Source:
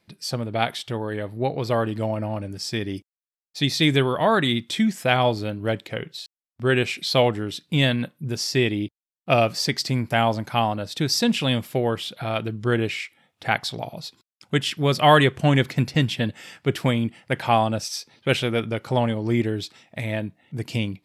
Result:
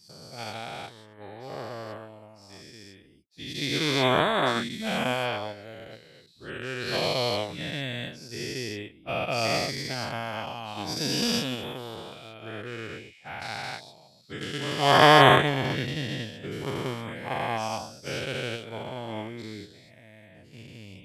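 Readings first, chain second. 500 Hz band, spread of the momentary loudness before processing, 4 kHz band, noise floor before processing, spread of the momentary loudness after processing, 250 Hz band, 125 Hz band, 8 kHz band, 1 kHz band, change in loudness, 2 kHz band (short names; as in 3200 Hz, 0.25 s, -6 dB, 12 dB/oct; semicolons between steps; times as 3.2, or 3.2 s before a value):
-5.0 dB, 12 LU, -3.0 dB, under -85 dBFS, 20 LU, -8.5 dB, -9.5 dB, -4.5 dB, -2.0 dB, -3.5 dB, -2.0 dB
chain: spectral dilation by 0.48 s; upward expander 2.5:1, over -23 dBFS; gain -6 dB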